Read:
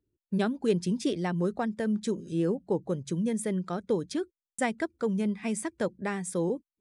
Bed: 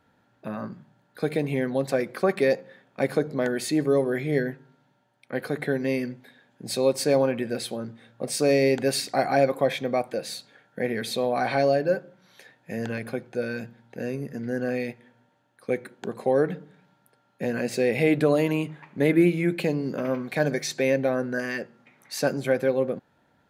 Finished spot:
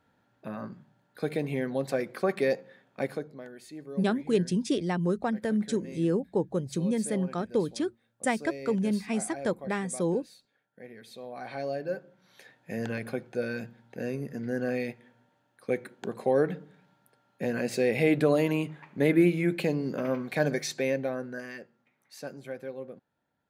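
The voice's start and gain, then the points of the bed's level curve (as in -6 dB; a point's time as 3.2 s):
3.65 s, +1.0 dB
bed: 2.98 s -4.5 dB
3.46 s -19.5 dB
11.03 s -19.5 dB
12.46 s -2.5 dB
20.57 s -2.5 dB
21.97 s -15.5 dB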